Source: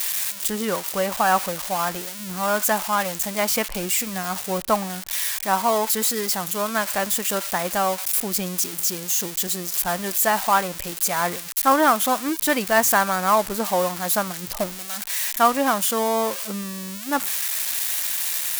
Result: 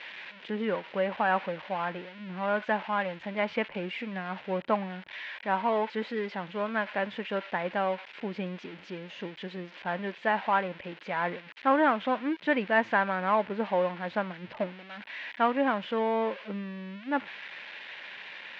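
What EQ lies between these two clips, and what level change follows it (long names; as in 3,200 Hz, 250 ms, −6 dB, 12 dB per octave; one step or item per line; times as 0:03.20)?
high-frequency loss of the air 160 metres
loudspeaker in its box 200–2,900 Hz, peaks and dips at 350 Hz −3 dB, 720 Hz −6 dB, 1,200 Hz −9 dB
−2.0 dB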